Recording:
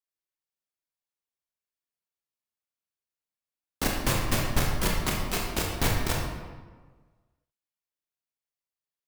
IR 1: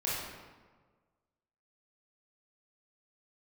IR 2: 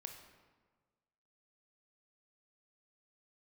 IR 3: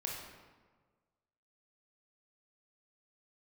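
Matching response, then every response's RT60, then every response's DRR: 3; 1.5, 1.5, 1.5 s; -7.5, 4.5, -2.0 dB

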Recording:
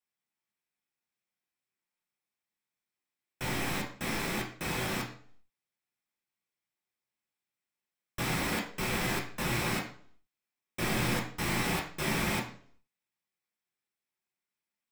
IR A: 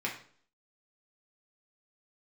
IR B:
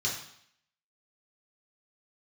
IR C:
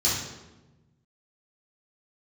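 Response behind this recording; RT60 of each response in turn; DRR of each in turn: A; 0.50, 0.65, 1.1 s; -3.0, -4.5, -9.5 dB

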